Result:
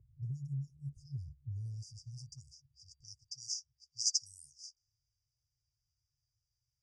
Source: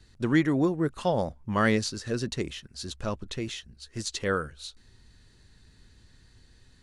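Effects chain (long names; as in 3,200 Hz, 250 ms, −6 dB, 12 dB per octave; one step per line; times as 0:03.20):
low-pass that shuts in the quiet parts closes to 820 Hz, open at −25.5 dBFS
brick-wall band-stop 150–4,700 Hz
brickwall limiter −31.5 dBFS, peak gain reduction 9.5 dB
band-pass filter sweep 400 Hz → 5,600 Hz, 0:01.57–0:03.47
level +15.5 dB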